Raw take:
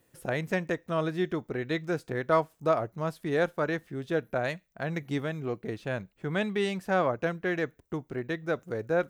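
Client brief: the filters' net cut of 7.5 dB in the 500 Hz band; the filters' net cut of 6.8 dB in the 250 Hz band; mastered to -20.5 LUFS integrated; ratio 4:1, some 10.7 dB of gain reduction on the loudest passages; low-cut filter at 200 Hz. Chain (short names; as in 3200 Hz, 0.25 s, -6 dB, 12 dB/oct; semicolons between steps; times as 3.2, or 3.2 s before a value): HPF 200 Hz; bell 250 Hz -4 dB; bell 500 Hz -8.5 dB; compressor 4:1, threshold -36 dBFS; gain +20.5 dB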